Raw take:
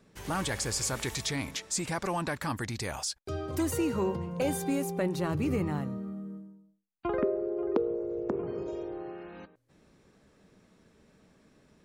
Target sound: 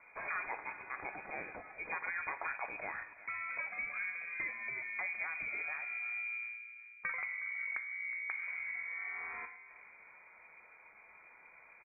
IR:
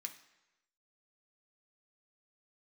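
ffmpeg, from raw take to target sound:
-filter_complex "[0:a]highpass=f=240:p=1,acompressor=threshold=-43dB:ratio=6,asplit=2[a][b];[b]adelay=367,lowpass=f=1.3k:p=1,volume=-14dB,asplit=2[c][d];[d]adelay=367,lowpass=f=1.3k:p=1,volume=0.55,asplit=2[e][f];[f]adelay=367,lowpass=f=1.3k:p=1,volume=0.55,asplit=2[g][h];[h]adelay=367,lowpass=f=1.3k:p=1,volume=0.55,asplit=2[i][j];[j]adelay=367,lowpass=f=1.3k:p=1,volume=0.55,asplit=2[k][l];[l]adelay=367,lowpass=f=1.3k:p=1,volume=0.55[m];[a][c][e][g][i][k][m]amix=inputs=7:normalize=0,asplit=2[n][o];[1:a]atrim=start_sample=2205,asetrate=33075,aresample=44100[p];[o][p]afir=irnorm=-1:irlink=0,volume=5dB[q];[n][q]amix=inputs=2:normalize=0,lowpass=f=2.2k:t=q:w=0.5098,lowpass=f=2.2k:t=q:w=0.6013,lowpass=f=2.2k:t=q:w=0.9,lowpass=f=2.2k:t=q:w=2.563,afreqshift=-2600,volume=1dB"

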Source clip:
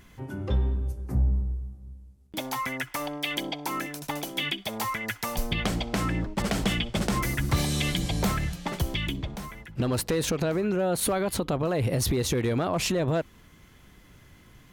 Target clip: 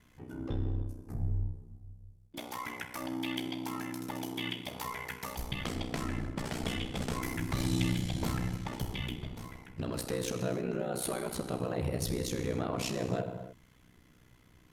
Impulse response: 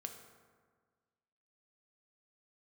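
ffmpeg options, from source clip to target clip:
-filter_complex "[1:a]atrim=start_sample=2205,afade=t=out:st=0.25:d=0.01,atrim=end_sample=11466,asetrate=27783,aresample=44100[a];[0:a][a]afir=irnorm=-1:irlink=0,aeval=exprs='val(0)*sin(2*PI*31*n/s)':c=same,volume=-4.5dB"

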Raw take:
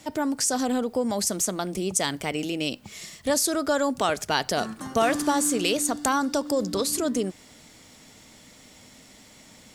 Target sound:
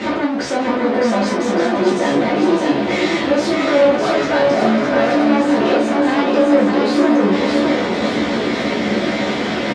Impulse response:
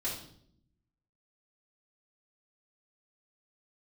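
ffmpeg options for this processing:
-filter_complex "[0:a]aeval=exprs='val(0)+0.5*0.112*sgn(val(0))':c=same,aemphasis=mode=reproduction:type=riaa,alimiter=limit=-13.5dB:level=0:latency=1:release=64,aeval=exprs='clip(val(0),-1,0.0891)':c=same,aeval=exprs='0.211*(cos(1*acos(clip(val(0)/0.211,-1,1)))-cos(1*PI/2))+0.0531*(cos(5*acos(clip(val(0)/0.211,-1,1)))-cos(5*PI/2))':c=same,highpass=300,lowpass=3.7k,asplit=2[a][b];[b]adelay=14,volume=-3dB[c];[a][c]amix=inputs=2:normalize=0,aecho=1:1:610|1159|1653|2098|2498:0.631|0.398|0.251|0.158|0.1[d];[1:a]atrim=start_sample=2205,atrim=end_sample=3528[e];[d][e]afir=irnorm=-1:irlink=0"

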